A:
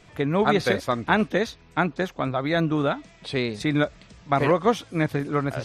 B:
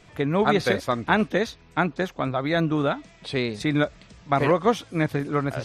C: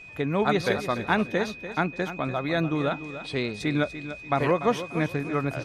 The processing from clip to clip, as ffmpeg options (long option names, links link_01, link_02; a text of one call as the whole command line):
ffmpeg -i in.wav -af anull out.wav
ffmpeg -i in.wav -filter_complex "[0:a]aeval=exprs='val(0)+0.01*sin(2*PI*2500*n/s)':channel_layout=same,asplit=2[link_01][link_02];[link_02]aecho=0:1:292|584|876:0.251|0.0703|0.0197[link_03];[link_01][link_03]amix=inputs=2:normalize=0,volume=-3dB" out.wav